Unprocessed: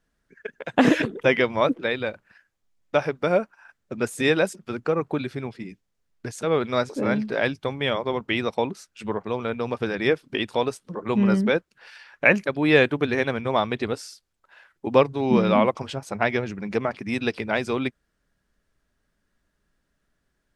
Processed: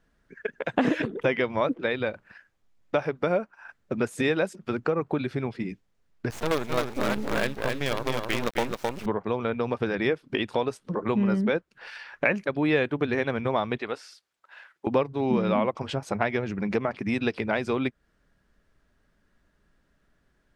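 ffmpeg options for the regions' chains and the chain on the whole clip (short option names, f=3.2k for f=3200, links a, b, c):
-filter_complex "[0:a]asettb=1/sr,asplit=3[a][b][c];[a]atrim=end=6.304[d];[b]atrim=start=6.3:end=9.06,asetpts=PTS-STARTPTS,afade=t=in:d=0.004:c=qsin,afade=t=out:st=2.756:d=0.004:c=qsin,bandreject=f=50:t=h:w=6,bandreject=f=100:t=h:w=6,acrusher=bits=4:dc=4:mix=0:aa=0.000001,aecho=1:1:263:0.562,atrim=end_sample=121716[e];[c]atrim=start=9.056[f];[d][e]acrossfade=d=0.004:c1=hsin:c2=qsin[g];[g][f]acrossfade=d=0.004:c1=qsin:c2=hsin,asettb=1/sr,asplit=3[h][i][j];[h]atrim=end=13.784[k];[i]atrim=start=13.78:end=14.87,asetpts=PTS-STARTPTS,afade=t=in:d=0.004:c=qsin,afade=t=out:st=1.086:d=0.004:c=qsin,highpass=f=1k:p=1,acrossover=split=3400[l][m];[m]acompressor=threshold=-50dB:ratio=4:attack=1:release=60[n];[l][n]amix=inputs=2:normalize=0[o];[j]atrim=start=14.866[p];[k][o]acrossfade=d=0.004:c1=hsin:c2=qsin[q];[q][p]acrossfade=d=0.004:c1=qsin:c2=hsin,highshelf=f=4.8k:g=-9.5,acompressor=threshold=-32dB:ratio=2.5,volume=6dB"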